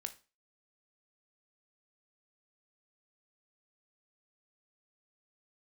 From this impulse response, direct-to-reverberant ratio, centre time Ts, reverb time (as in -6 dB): 8.0 dB, 6 ms, 0.30 s